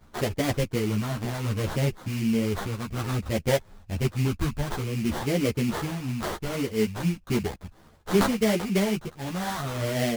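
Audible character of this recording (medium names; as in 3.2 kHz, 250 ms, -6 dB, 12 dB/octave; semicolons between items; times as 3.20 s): phasing stages 2, 0.61 Hz, lowest notch 450–1600 Hz; aliases and images of a low sample rate 2.6 kHz, jitter 20%; a shimmering, thickened sound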